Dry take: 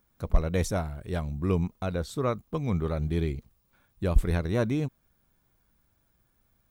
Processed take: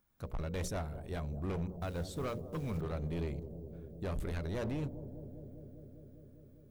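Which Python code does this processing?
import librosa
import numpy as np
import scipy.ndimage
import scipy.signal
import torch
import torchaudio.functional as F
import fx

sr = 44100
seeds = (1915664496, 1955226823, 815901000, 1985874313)

p1 = fx.quant_companded(x, sr, bits=6, at=(1.81, 2.81))
p2 = fx.hum_notches(p1, sr, base_hz=60, count=10)
p3 = np.clip(10.0 ** (27.0 / 20.0) * p2, -1.0, 1.0) / 10.0 ** (27.0 / 20.0)
p4 = p3 + fx.echo_bbd(p3, sr, ms=200, stages=1024, feedback_pct=82, wet_db=-12, dry=0)
y = p4 * 10.0 ** (-6.5 / 20.0)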